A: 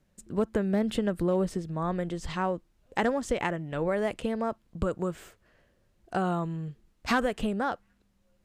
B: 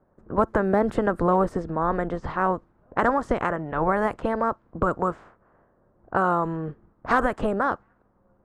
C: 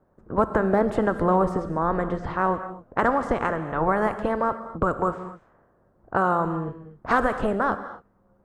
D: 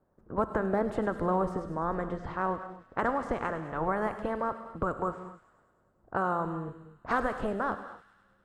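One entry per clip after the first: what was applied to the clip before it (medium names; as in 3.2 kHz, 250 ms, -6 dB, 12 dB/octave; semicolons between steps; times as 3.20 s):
spectral peaks clipped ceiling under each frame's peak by 15 dB; level-controlled noise filter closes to 1.2 kHz, open at -24 dBFS; resonant high shelf 1.9 kHz -14 dB, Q 1.5; trim +5 dB
gated-style reverb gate 280 ms flat, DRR 10 dB
feedback echo behind a high-pass 102 ms, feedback 70%, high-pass 2.7 kHz, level -10 dB; trim -7.5 dB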